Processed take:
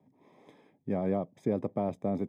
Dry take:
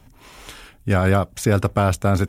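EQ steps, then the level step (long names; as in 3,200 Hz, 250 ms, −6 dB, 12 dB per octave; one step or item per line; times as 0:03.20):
moving average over 31 samples
high-pass filter 160 Hz 24 dB per octave
−8.0 dB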